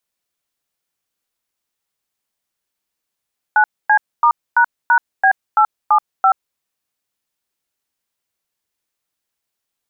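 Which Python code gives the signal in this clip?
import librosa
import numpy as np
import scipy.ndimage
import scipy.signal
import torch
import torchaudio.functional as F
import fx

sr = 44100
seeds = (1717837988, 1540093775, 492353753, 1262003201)

y = fx.dtmf(sr, digits='9C*##B875', tone_ms=80, gap_ms=255, level_db=-11.0)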